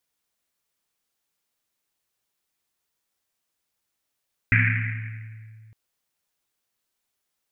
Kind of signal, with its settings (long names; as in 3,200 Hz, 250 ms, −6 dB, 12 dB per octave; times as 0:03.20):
drum after Risset length 1.21 s, pitch 110 Hz, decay 2.56 s, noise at 2,000 Hz, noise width 840 Hz, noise 45%